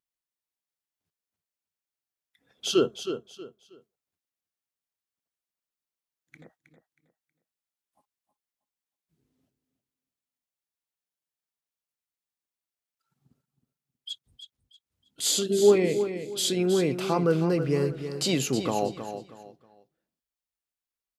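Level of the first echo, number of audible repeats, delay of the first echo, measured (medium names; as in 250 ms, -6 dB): -9.5 dB, 3, 318 ms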